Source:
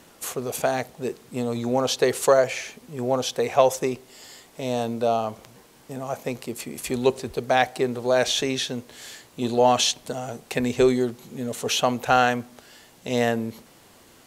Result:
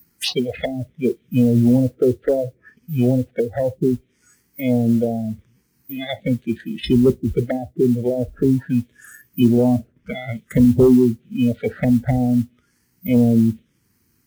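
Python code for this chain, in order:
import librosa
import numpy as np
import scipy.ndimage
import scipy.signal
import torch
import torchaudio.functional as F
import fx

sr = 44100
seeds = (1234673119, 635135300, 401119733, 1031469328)

y = fx.bit_reversed(x, sr, seeds[0], block=16)
y = (np.kron(scipy.signal.resample_poly(y, 1, 3), np.eye(3)[0]) * 3)[:len(y)]
y = fx.env_lowpass_down(y, sr, base_hz=370.0, full_db=-15.5)
y = fx.fold_sine(y, sr, drive_db=6, ceiling_db=-9.5)
y = fx.curve_eq(y, sr, hz=(220.0, 1100.0, 3600.0, 12000.0), db=(0, -5, 12, 0))
y = fx.env_phaser(y, sr, low_hz=570.0, high_hz=2100.0, full_db=-12.5)
y = fx.noise_reduce_blind(y, sr, reduce_db=22)
y = scipy.signal.sosfilt(scipy.signal.butter(2, 46.0, 'highpass', fs=sr, output='sos'), y)
y = fx.low_shelf(y, sr, hz=280.0, db=10.0)
y = fx.mod_noise(y, sr, seeds[1], snr_db=31)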